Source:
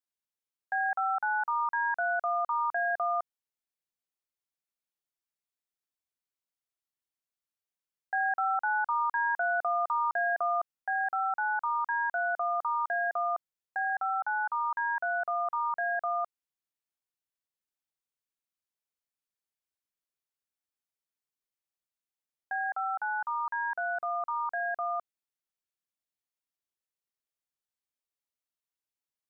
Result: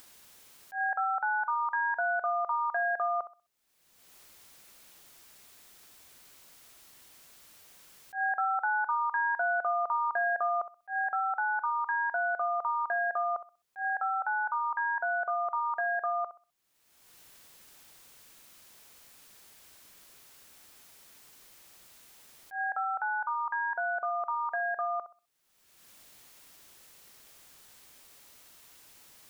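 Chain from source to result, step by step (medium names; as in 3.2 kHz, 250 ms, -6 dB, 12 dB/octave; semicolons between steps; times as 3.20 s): flutter echo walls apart 11 m, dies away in 0.27 s; upward compressor, threshold -28 dBFS; slow attack 103 ms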